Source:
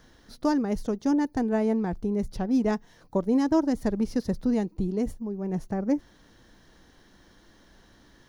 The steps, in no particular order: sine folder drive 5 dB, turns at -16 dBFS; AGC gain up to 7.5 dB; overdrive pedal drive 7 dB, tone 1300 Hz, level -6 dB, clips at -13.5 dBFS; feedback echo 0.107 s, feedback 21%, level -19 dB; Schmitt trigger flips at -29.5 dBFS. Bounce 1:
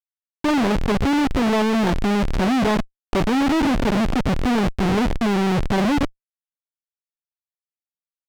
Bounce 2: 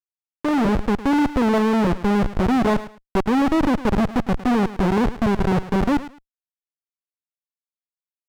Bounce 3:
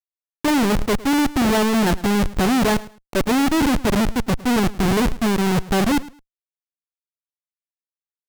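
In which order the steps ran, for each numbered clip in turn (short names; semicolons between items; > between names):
feedback echo > AGC > Schmitt trigger > overdrive pedal > sine folder; Schmitt trigger > feedback echo > sine folder > AGC > overdrive pedal; overdrive pedal > AGC > Schmitt trigger > sine folder > feedback echo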